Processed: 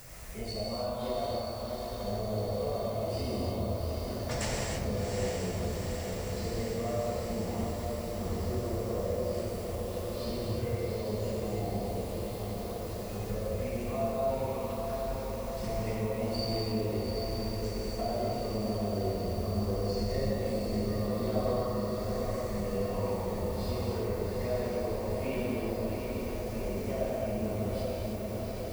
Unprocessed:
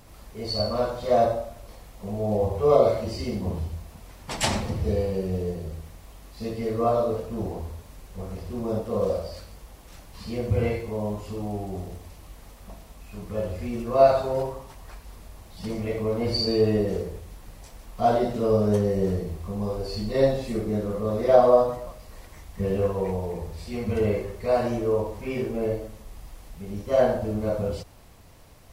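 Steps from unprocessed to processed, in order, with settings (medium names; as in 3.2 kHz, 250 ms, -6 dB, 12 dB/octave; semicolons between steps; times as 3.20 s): drifting ripple filter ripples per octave 0.54, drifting +0.45 Hz, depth 7 dB; compression 5:1, threshold -32 dBFS, peak gain reduction 20 dB; added noise violet -58 dBFS; on a send: echo that smears into a reverb 758 ms, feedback 78%, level -4.5 dB; on the sum: gated-style reverb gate 350 ms flat, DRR -3 dB; tape noise reduction on one side only encoder only; trim -4.5 dB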